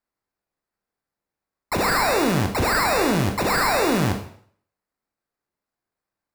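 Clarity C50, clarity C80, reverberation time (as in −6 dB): 8.0 dB, 12.0 dB, 0.60 s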